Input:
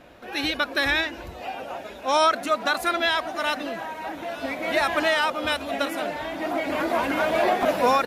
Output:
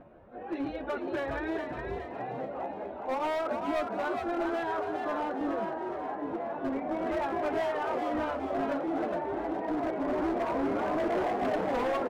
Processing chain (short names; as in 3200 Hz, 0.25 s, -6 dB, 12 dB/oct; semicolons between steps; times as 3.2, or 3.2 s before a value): plain phase-vocoder stretch 1.5×; in parallel at +1 dB: compressor 10:1, threshold -34 dBFS, peak gain reduction 16.5 dB; on the sum: LPF 1000 Hz 12 dB/oct; dynamic EQ 330 Hz, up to +7 dB, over -38 dBFS, Q 0.73; overloaded stage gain 21 dB; frequency-shifting echo 0.414 s, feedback 46%, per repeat +72 Hz, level -5 dB; gain -7 dB